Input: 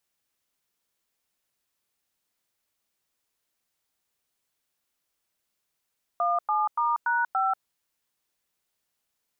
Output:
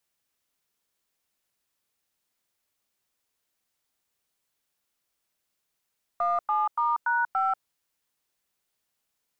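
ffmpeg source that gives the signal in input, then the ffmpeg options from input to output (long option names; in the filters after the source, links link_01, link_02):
-f lavfi -i "aevalsrc='0.0596*clip(min(mod(t,0.287),0.188-mod(t,0.287))/0.002,0,1)*(eq(floor(t/0.287),0)*(sin(2*PI*697*mod(t,0.287))+sin(2*PI*1209*mod(t,0.287)))+eq(floor(t/0.287),1)*(sin(2*PI*852*mod(t,0.287))+sin(2*PI*1209*mod(t,0.287)))+eq(floor(t/0.287),2)*(sin(2*PI*941*mod(t,0.287))+sin(2*PI*1209*mod(t,0.287)))+eq(floor(t/0.287),3)*(sin(2*PI*941*mod(t,0.287))+sin(2*PI*1477*mod(t,0.287)))+eq(floor(t/0.287),4)*(sin(2*PI*770*mod(t,0.287))+sin(2*PI*1336*mod(t,0.287))))':duration=1.435:sample_rate=44100"
-filter_complex "[0:a]acrossover=split=700|800|910[link_01][link_02][link_03][link_04];[link_01]aeval=exprs='clip(val(0),-1,0.0141)':channel_layout=same[link_05];[link_05][link_02][link_03][link_04]amix=inputs=4:normalize=0"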